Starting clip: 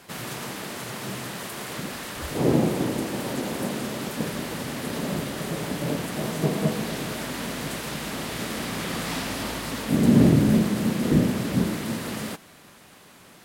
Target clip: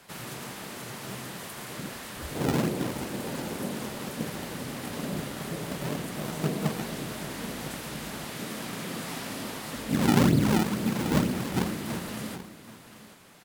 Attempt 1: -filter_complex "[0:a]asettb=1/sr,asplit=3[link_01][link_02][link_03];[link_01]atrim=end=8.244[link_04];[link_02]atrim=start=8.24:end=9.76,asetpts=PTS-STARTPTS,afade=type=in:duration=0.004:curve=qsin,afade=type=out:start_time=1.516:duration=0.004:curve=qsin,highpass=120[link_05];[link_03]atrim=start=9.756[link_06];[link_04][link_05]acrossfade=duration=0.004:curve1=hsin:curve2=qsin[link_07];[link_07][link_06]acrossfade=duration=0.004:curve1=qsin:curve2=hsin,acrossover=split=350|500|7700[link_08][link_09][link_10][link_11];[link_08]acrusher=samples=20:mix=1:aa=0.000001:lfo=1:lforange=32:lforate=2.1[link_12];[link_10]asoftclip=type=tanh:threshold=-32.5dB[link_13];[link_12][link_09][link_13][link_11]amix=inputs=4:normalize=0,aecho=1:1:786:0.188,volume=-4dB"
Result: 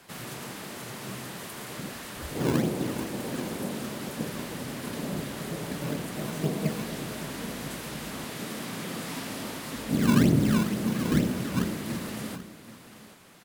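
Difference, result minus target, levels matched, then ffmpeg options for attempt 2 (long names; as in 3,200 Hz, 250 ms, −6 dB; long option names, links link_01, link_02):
sample-and-hold swept by an LFO: distortion −9 dB
-filter_complex "[0:a]asettb=1/sr,asplit=3[link_01][link_02][link_03];[link_01]atrim=end=8.244[link_04];[link_02]atrim=start=8.24:end=9.76,asetpts=PTS-STARTPTS,afade=type=in:duration=0.004:curve=qsin,afade=type=out:start_time=1.516:duration=0.004:curve=qsin,highpass=120[link_05];[link_03]atrim=start=9.756[link_06];[link_04][link_05]acrossfade=duration=0.004:curve1=hsin:curve2=qsin[link_07];[link_07][link_06]acrossfade=duration=0.004:curve1=qsin:curve2=hsin,acrossover=split=350|500|7700[link_08][link_09][link_10][link_11];[link_08]acrusher=samples=46:mix=1:aa=0.000001:lfo=1:lforange=73.6:lforate=2.1[link_12];[link_10]asoftclip=type=tanh:threshold=-32.5dB[link_13];[link_12][link_09][link_13][link_11]amix=inputs=4:normalize=0,aecho=1:1:786:0.188,volume=-4dB"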